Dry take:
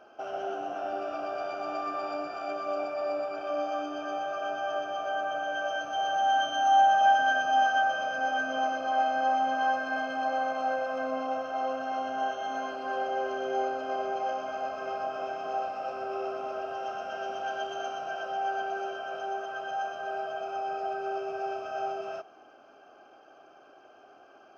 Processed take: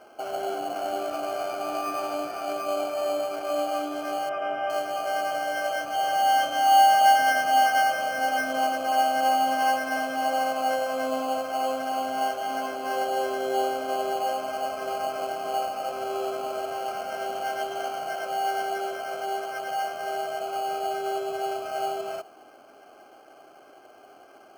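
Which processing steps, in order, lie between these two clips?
in parallel at −3.5 dB: decimation without filtering 12×
0:04.29–0:04.70: on the sum: Savitzky-Golay smoothing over 25 samples

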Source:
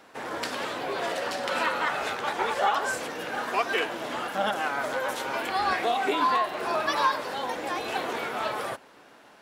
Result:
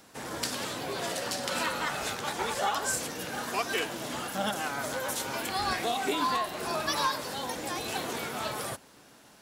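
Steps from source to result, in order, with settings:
bass and treble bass +12 dB, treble +14 dB
level −5.5 dB

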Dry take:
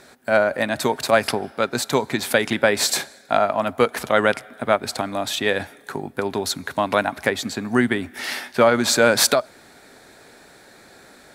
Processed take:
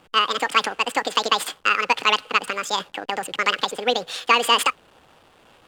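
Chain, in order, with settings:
low-pass filter 3,300 Hz 12 dB per octave
parametric band 1,300 Hz +6 dB 0.5 octaves
slack as between gear wheels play −40 dBFS
wrong playback speed 7.5 ips tape played at 15 ips
level −2 dB

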